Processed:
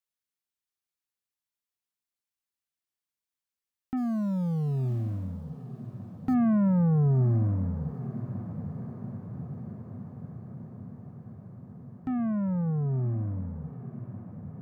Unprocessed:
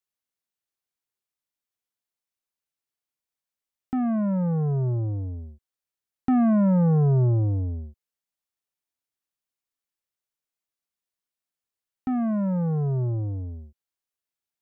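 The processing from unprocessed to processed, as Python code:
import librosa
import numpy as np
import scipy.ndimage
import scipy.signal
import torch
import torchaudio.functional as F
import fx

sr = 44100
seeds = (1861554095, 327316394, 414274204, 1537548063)

y = fx.law_mismatch(x, sr, coded='A', at=(3.96, 6.33), fade=0.02)
y = fx.peak_eq(y, sr, hz=570.0, db=-5.0, octaves=1.2)
y = fx.echo_diffused(y, sr, ms=956, feedback_pct=71, wet_db=-12.5)
y = y * librosa.db_to_amplitude(-3.0)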